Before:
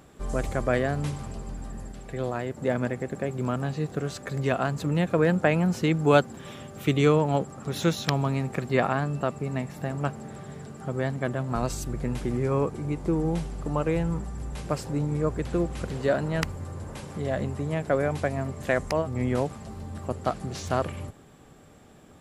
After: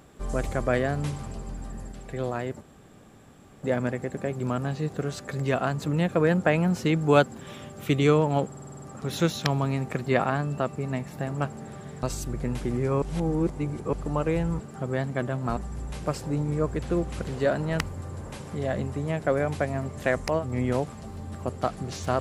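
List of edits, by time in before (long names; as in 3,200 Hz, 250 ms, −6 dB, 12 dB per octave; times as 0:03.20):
0:02.61: splice in room tone 1.02 s
0:07.45: stutter 0.05 s, 8 plays
0:10.66–0:11.63: move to 0:14.20
0:12.62–0:13.53: reverse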